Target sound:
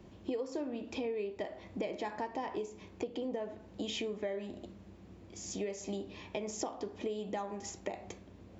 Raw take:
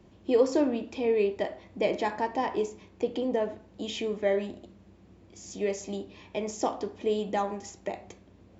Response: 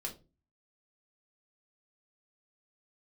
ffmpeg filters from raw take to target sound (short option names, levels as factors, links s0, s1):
-af "acompressor=threshold=0.0158:ratio=8,volume=1.19"